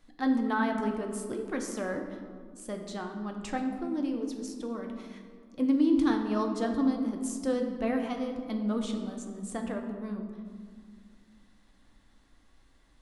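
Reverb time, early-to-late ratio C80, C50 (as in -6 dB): 2.0 s, 7.5 dB, 6.0 dB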